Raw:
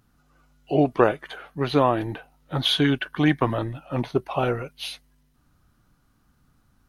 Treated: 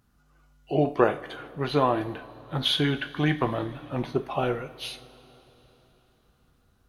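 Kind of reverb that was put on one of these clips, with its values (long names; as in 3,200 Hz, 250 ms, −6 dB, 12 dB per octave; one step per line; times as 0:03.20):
coupled-rooms reverb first 0.35 s, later 4 s, from −20 dB, DRR 7 dB
level −3.5 dB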